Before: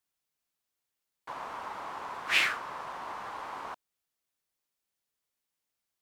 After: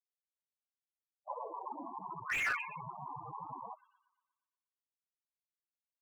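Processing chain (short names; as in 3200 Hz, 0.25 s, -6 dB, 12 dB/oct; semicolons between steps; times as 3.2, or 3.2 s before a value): backlash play -35 dBFS; high-pass sweep 640 Hz -> 130 Hz, 1.17–2.24; thin delay 0.119 s, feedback 52%, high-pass 2300 Hz, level -8.5 dB; loudest bins only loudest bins 8; dynamic EQ 1500 Hz, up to +5 dB, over -43 dBFS, Q 0.87; slew limiter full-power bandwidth 37 Hz; gain +3 dB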